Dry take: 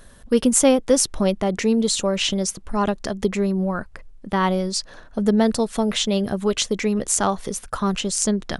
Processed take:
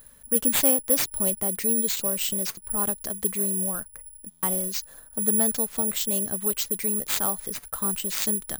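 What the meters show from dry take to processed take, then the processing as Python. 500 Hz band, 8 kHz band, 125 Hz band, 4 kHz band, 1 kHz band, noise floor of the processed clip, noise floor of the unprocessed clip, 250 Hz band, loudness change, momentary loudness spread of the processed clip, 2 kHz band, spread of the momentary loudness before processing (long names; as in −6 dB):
−11.0 dB, +0.5 dB, −11.0 dB, −7.5 dB, −11.0 dB, −52 dBFS, −46 dBFS, −11.0 dB, −2.5 dB, 9 LU, −7.0 dB, 8 LU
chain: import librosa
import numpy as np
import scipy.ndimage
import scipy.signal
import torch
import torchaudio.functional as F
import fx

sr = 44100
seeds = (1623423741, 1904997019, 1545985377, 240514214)

y = (np.kron(x[::4], np.eye(4)[0]) * 4)[:len(x)]
y = fx.buffer_glitch(y, sr, at_s=(4.3,), block=512, repeats=10)
y = y * 10.0 ** (-11.0 / 20.0)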